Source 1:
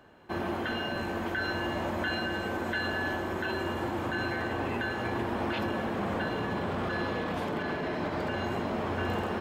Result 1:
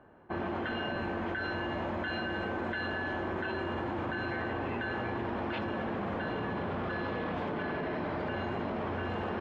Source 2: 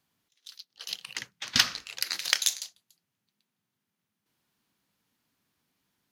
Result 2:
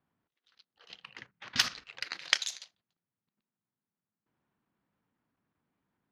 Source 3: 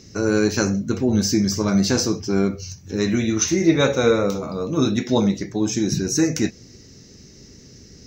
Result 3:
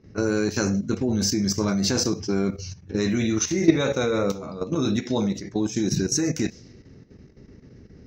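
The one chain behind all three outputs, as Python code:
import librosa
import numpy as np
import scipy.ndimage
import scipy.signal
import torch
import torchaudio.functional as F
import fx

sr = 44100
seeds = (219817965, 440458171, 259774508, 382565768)

y = fx.env_lowpass(x, sr, base_hz=1500.0, full_db=-18.0)
y = fx.level_steps(y, sr, step_db=12)
y = F.gain(torch.from_numpy(y), 1.5).numpy()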